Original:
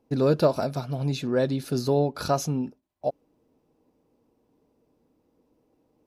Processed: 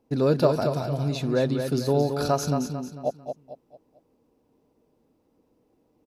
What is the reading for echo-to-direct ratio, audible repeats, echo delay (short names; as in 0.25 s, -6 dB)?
-6.0 dB, 4, 0.223 s